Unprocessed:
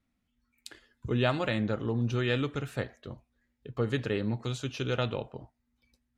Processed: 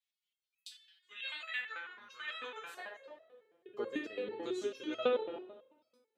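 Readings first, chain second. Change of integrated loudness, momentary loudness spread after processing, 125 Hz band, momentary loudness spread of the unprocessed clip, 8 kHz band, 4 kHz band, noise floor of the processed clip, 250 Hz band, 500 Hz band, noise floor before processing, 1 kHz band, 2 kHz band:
-8.5 dB, 20 LU, under -35 dB, 20 LU, -8.5 dB, -6.5 dB, under -85 dBFS, -12.5 dB, -5.5 dB, -79 dBFS, -7.5 dB, -4.5 dB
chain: spring tank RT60 1.2 s, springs 42/57 ms, chirp 35 ms, DRR 4.5 dB; high-pass sweep 3200 Hz -> 340 Hz, 0.81–3.96; stepped resonator 9.1 Hz 170–650 Hz; gain +6 dB

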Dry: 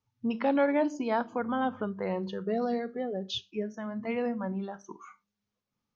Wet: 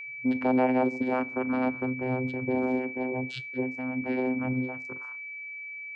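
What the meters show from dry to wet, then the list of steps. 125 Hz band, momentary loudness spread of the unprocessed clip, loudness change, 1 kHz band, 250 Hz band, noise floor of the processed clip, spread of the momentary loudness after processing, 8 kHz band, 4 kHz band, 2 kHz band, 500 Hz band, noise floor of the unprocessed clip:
+6.0 dB, 10 LU, +2.0 dB, +0.5 dB, +4.0 dB, -40 dBFS, 12 LU, n/a, -8.0 dB, +7.5 dB, +0.5 dB, under -85 dBFS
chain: vocoder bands 8, saw 128 Hz; whine 2300 Hz -40 dBFS; gain +3 dB

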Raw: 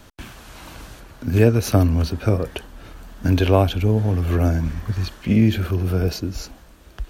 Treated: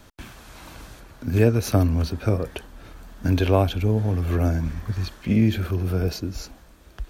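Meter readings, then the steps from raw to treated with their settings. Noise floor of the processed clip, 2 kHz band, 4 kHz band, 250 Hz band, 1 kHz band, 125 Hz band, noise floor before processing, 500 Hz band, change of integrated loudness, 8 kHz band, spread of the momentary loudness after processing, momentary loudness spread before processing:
-51 dBFS, -3.0 dB, -3.5 dB, -3.0 dB, -3.0 dB, -3.0 dB, -48 dBFS, -3.0 dB, -3.0 dB, -3.0 dB, 20 LU, 20 LU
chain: notch 2900 Hz, Q 21; gain -3 dB

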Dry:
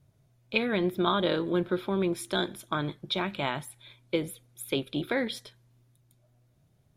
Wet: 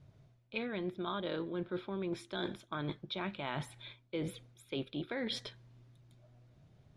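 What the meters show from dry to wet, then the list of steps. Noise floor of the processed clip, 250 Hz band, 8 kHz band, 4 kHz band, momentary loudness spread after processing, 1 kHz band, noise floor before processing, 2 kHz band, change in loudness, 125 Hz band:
-67 dBFS, -9.0 dB, -13.0 dB, -9.0 dB, 5 LU, -10.5 dB, -66 dBFS, -10.0 dB, -9.5 dB, -7.5 dB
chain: LPF 4800 Hz 12 dB/oct; reverse; compressor 6:1, threshold -40 dBFS, peak gain reduction 17.5 dB; reverse; gain +4 dB

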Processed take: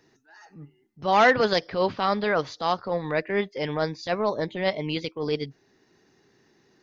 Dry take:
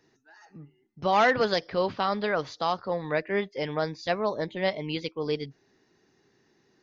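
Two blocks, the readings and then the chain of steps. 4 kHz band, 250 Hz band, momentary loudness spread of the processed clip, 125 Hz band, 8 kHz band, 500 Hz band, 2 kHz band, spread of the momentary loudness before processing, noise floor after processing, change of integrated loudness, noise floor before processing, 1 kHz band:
+2.5 dB, +3.0 dB, 11 LU, +3.0 dB, n/a, +2.5 dB, +3.0 dB, 10 LU, -65 dBFS, +2.5 dB, -68 dBFS, +2.5 dB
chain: transient shaper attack -7 dB, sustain -2 dB; gain +4.5 dB

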